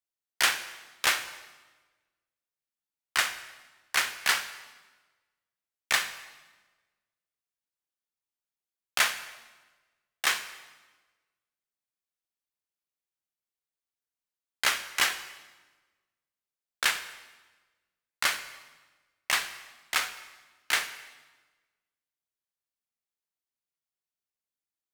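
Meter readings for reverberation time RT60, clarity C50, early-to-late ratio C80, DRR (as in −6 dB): 1.3 s, 11.5 dB, 13.0 dB, 9.5 dB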